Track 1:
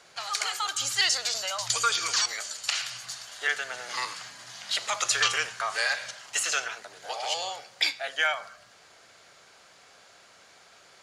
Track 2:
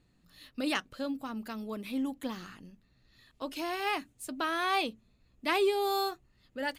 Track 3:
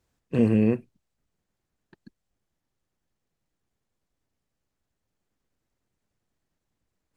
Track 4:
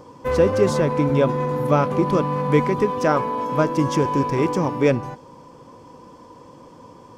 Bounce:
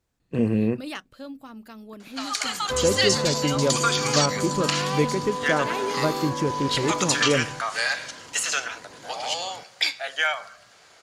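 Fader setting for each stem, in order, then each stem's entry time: +2.0, −3.5, −1.5, −5.0 decibels; 2.00, 0.20, 0.00, 2.45 seconds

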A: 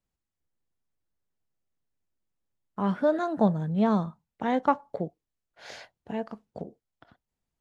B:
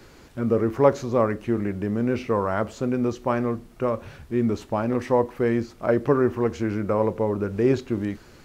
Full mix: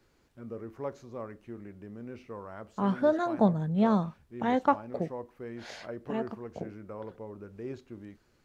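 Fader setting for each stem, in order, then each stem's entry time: −1.0, −19.0 decibels; 0.00, 0.00 seconds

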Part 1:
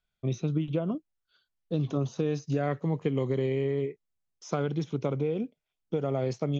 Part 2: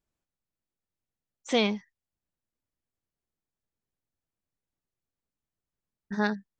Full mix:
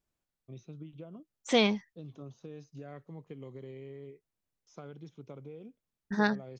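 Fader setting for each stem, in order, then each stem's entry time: −17.5, 0.0 decibels; 0.25, 0.00 seconds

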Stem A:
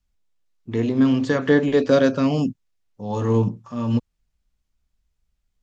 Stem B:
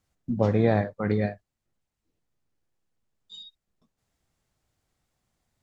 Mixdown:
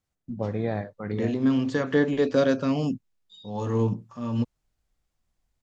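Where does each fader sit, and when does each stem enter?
−5.0, −6.5 decibels; 0.45, 0.00 seconds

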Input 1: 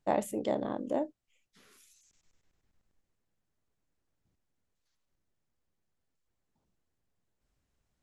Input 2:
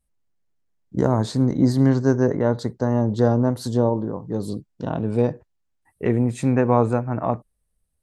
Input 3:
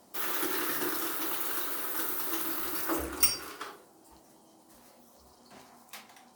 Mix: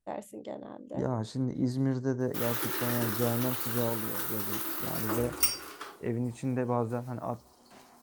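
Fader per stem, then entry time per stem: −9.0, −12.0, −1.5 decibels; 0.00, 0.00, 2.20 seconds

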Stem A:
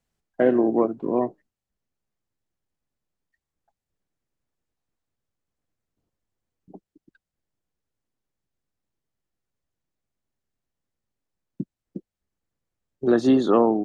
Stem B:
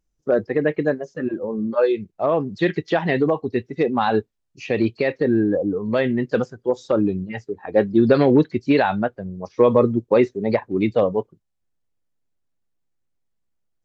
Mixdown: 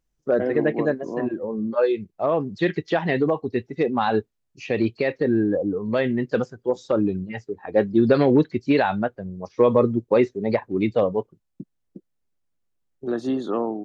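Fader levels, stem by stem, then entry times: −7.0, −2.0 decibels; 0.00, 0.00 seconds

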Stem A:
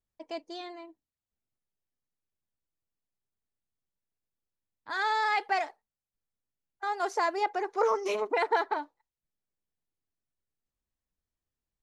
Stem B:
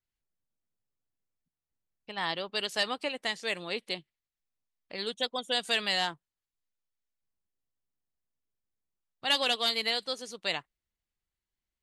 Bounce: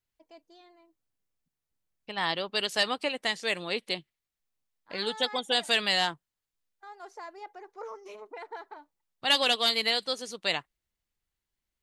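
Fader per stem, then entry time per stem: −15.0, +3.0 decibels; 0.00, 0.00 seconds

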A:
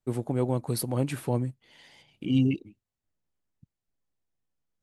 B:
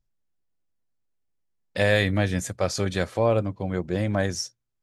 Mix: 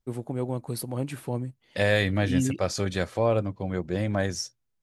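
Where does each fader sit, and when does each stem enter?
−3.0, −2.0 decibels; 0.00, 0.00 seconds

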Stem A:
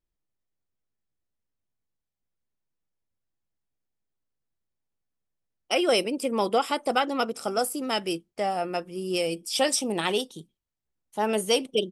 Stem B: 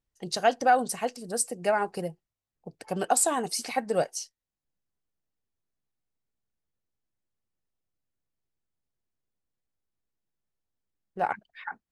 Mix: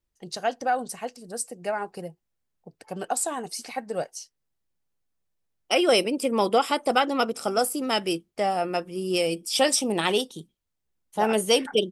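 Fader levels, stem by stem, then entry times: +2.5, −3.5 decibels; 0.00, 0.00 seconds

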